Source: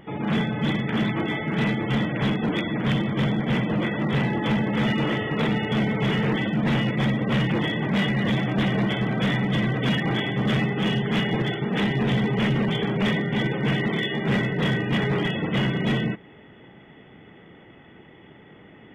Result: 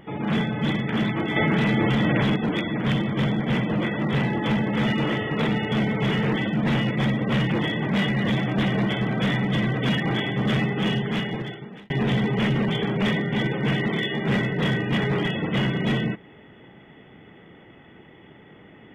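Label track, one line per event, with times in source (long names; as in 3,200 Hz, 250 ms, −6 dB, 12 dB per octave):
1.360000	2.360000	envelope flattener amount 100%
10.910000	11.900000	fade out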